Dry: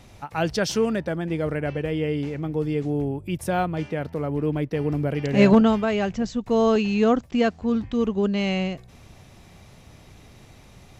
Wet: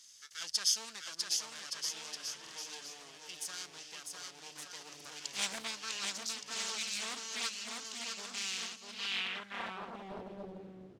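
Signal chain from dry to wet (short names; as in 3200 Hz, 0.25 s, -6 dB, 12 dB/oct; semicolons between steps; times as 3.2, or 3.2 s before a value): minimum comb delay 0.61 ms; high shelf 3400 Hz +10.5 dB; on a send: bouncing-ball echo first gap 0.65 s, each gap 0.8×, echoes 5; on the sum: band-pass sweep 5900 Hz -> 340 Hz, 8.81–10.51; stuck buffer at 2.42/4.96, samples 2048, times 1; Doppler distortion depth 0.81 ms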